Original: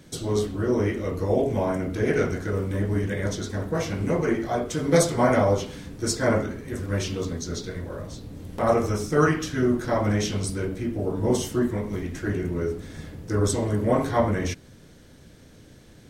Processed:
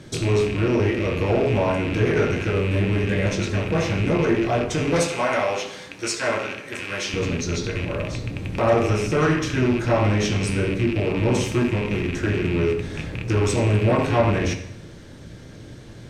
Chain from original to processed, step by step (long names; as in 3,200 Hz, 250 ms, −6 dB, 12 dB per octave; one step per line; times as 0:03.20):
loose part that buzzes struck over −33 dBFS, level −24 dBFS
0:04.99–0:07.14: high-pass filter 1,100 Hz 6 dB per octave
in parallel at −1 dB: downward compressor, threshold −32 dBFS, peak gain reduction 17 dB
on the sum: soft clipping −15.5 dBFS, distortion −15 dB
high-frequency loss of the air 50 metres
on a send at −4.5 dB: convolution reverb RT60 0.85 s, pre-delay 4 ms
on the sum: level +2 dB